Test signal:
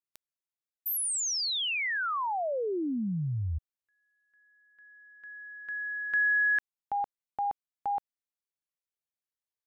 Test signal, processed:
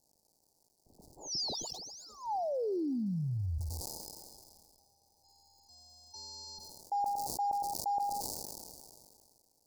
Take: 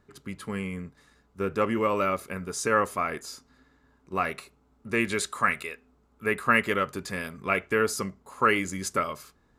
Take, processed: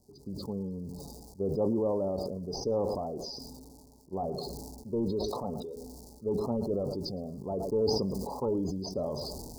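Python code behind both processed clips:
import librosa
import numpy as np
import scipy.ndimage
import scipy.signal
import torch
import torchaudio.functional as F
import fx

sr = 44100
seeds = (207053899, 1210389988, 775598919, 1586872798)

y = fx.cvsd(x, sr, bps=32000)
y = fx.spec_topn(y, sr, count=64)
y = fx.dmg_crackle(y, sr, seeds[0], per_s=400.0, level_db=-52.0)
y = scipy.signal.sosfilt(scipy.signal.cheby1(4, 1.0, [870.0, 4600.0], 'bandstop', fs=sr, output='sos'), y)
y = fx.echo_feedback(y, sr, ms=111, feedback_pct=22, wet_db=-21)
y = fx.sustainer(y, sr, db_per_s=27.0)
y = F.gain(torch.from_numpy(y), -2.0).numpy()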